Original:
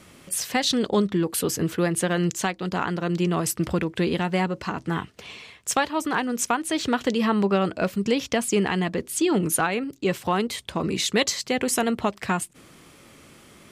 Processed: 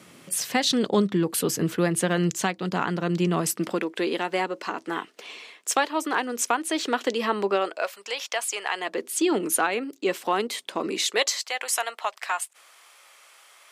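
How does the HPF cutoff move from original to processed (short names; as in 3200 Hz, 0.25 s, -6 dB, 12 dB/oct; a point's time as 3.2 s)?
HPF 24 dB/oct
3.26 s 120 Hz
3.89 s 290 Hz
7.5 s 290 Hz
7.92 s 650 Hz
8.65 s 650 Hz
9.05 s 270 Hz
10.92 s 270 Hz
11.47 s 700 Hz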